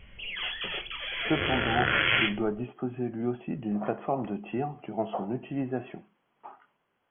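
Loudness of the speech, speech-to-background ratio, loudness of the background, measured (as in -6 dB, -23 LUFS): -32.5 LUFS, -4.5 dB, -28.0 LUFS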